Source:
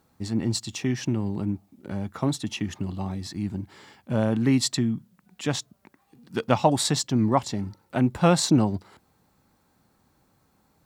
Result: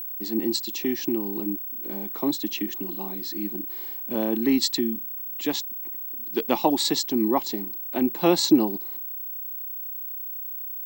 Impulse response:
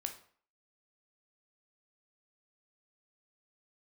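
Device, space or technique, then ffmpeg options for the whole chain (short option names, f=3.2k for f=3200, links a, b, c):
old television with a line whistle: -af "highpass=f=230:w=0.5412,highpass=f=230:w=1.3066,equalizer=f=340:t=q:w=4:g=8,equalizer=f=600:t=q:w=4:g=-5,equalizer=f=1.4k:t=q:w=4:g=-10,equalizer=f=4.1k:t=q:w=4:g=5,lowpass=f=7.6k:w=0.5412,lowpass=f=7.6k:w=1.3066,aeval=exprs='val(0)+0.0282*sin(2*PI*15734*n/s)':c=same"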